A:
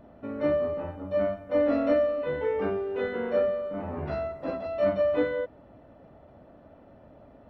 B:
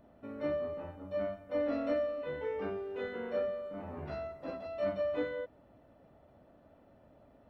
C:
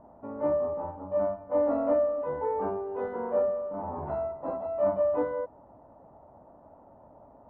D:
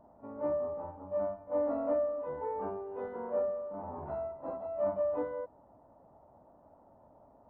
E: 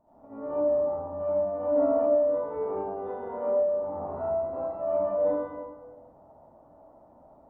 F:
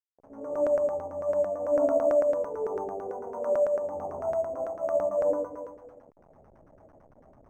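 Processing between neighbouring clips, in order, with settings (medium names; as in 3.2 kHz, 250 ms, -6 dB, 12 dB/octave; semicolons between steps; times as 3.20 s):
treble shelf 3.7 kHz +8 dB; trim -9 dB
resonant low-pass 930 Hz, resonance Q 4.3; trim +3.5 dB
pre-echo 44 ms -17 dB; trim -6.5 dB
reverberation RT60 1.3 s, pre-delay 65 ms, DRR -12 dB; trim -8.5 dB
send-on-delta sampling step -47.5 dBFS; LFO low-pass saw down 9 Hz 420–1500 Hz; decimation joined by straight lines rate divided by 6×; trim -4.5 dB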